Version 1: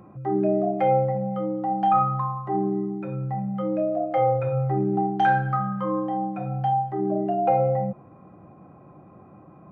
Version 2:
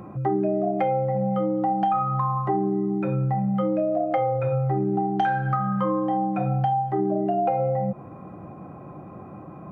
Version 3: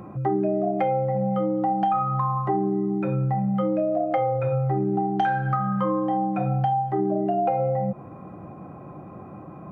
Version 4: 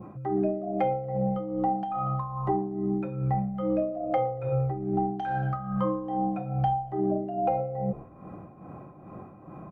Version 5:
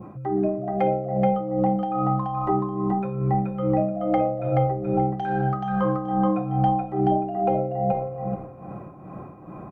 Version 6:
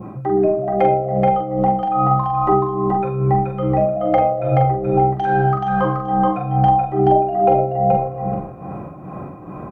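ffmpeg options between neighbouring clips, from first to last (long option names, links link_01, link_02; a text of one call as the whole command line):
ffmpeg -i in.wav -af "acompressor=threshold=-28dB:ratio=10,volume=8dB" out.wav
ffmpeg -i in.wav -af anull out.wav
ffmpeg -i in.wav -filter_complex "[0:a]asplit=6[link_01][link_02][link_03][link_04][link_05][link_06];[link_02]adelay=116,afreqshift=-65,volume=-21.5dB[link_07];[link_03]adelay=232,afreqshift=-130,volume=-25.8dB[link_08];[link_04]adelay=348,afreqshift=-195,volume=-30.1dB[link_09];[link_05]adelay=464,afreqshift=-260,volume=-34.4dB[link_10];[link_06]adelay=580,afreqshift=-325,volume=-38.7dB[link_11];[link_01][link_07][link_08][link_09][link_10][link_11]amix=inputs=6:normalize=0,tremolo=f=2.4:d=0.65,adynamicequalizer=threshold=0.00562:dfrequency=1700:dqfactor=1.2:tfrequency=1700:tqfactor=1.2:attack=5:release=100:ratio=0.375:range=3:mode=cutabove:tftype=bell,volume=-1.5dB" out.wav
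ffmpeg -i in.wav -af "aecho=1:1:428|856|1284:0.708|0.142|0.0283,volume=3dB" out.wav
ffmpeg -i in.wav -filter_complex "[0:a]asplit=2[link_01][link_02];[link_02]adelay=43,volume=-5dB[link_03];[link_01][link_03]amix=inputs=2:normalize=0,volume=6.5dB" out.wav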